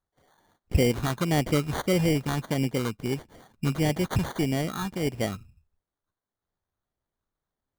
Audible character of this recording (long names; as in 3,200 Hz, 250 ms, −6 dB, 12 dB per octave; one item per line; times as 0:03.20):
phaser sweep stages 8, 1.6 Hz, lowest notch 530–1,400 Hz
aliases and images of a low sample rate 2,600 Hz, jitter 0%